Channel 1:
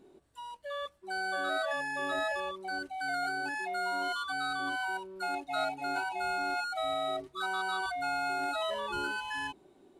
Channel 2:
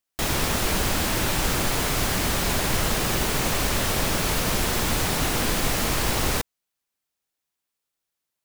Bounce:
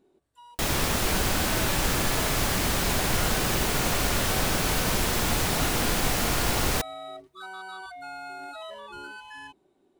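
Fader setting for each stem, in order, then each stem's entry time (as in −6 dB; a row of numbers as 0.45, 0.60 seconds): −6.5, −1.5 decibels; 0.00, 0.40 seconds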